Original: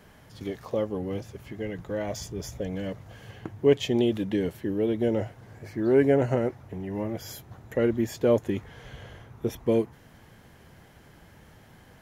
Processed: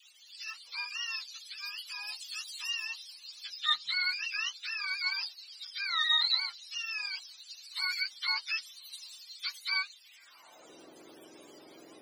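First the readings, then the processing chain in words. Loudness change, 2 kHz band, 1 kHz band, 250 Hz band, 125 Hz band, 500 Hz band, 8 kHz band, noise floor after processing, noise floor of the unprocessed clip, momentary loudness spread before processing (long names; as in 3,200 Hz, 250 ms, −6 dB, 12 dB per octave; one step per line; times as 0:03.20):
−5.0 dB, +8.0 dB, −2.5 dB, below −30 dB, below −40 dB, below −35 dB, −1.0 dB, −57 dBFS, −54 dBFS, 19 LU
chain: frequency axis turned over on the octave scale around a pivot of 720 Hz
high-pass filter sweep 3,400 Hz → 390 Hz, 0:10.02–0:10.69
all-pass dispersion lows, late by 46 ms, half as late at 770 Hz
level +1.5 dB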